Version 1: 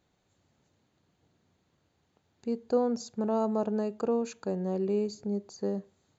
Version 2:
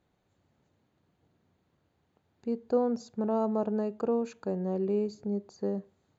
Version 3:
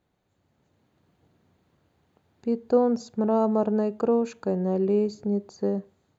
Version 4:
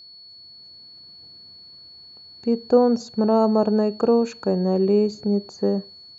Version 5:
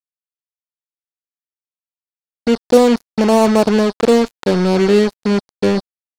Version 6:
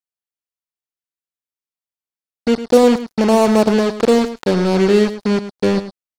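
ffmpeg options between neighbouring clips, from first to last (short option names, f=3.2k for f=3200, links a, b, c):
-af "highshelf=f=3.9k:g=-11.5"
-af "dynaudnorm=f=280:g=5:m=6dB"
-af "aeval=exprs='val(0)+0.00447*sin(2*PI*4400*n/s)':c=same,volume=4.5dB"
-af "acrusher=bits=3:mix=0:aa=0.5,volume=6dB"
-af "aecho=1:1:106:0.237,volume=-1dB"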